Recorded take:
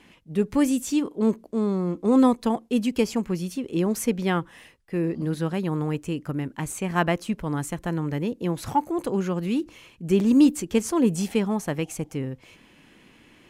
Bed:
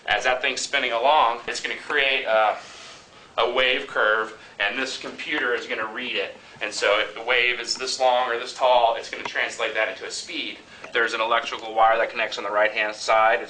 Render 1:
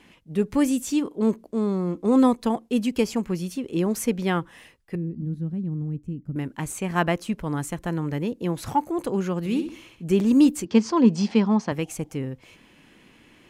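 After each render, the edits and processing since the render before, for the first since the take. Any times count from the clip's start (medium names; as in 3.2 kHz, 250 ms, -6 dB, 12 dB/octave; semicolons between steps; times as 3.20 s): 4.95–6.36 s: FFT filter 210 Hz 0 dB, 430 Hz -14 dB, 960 Hz -25 dB; 9.39–10.04 s: flutter echo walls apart 11.4 m, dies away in 0.46 s; 10.65–11.72 s: cabinet simulation 130–5800 Hz, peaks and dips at 220 Hz +7 dB, 1 kHz +7 dB, 4.8 kHz +8 dB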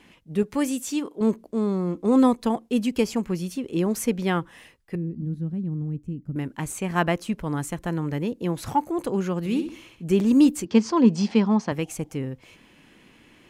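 0.43–1.21 s: bass shelf 210 Hz -11 dB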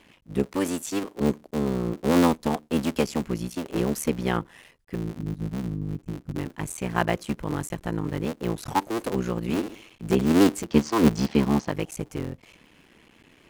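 cycle switcher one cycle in 3, muted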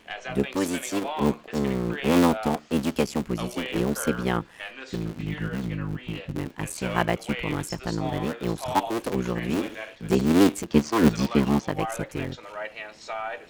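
add bed -14.5 dB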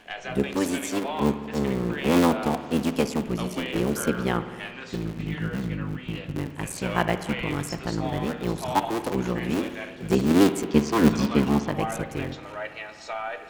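reverse echo 121 ms -23.5 dB; spring tank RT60 2.1 s, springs 55 ms, chirp 55 ms, DRR 10.5 dB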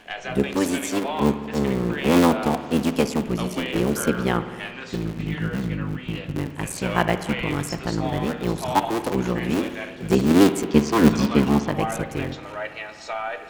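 trim +3 dB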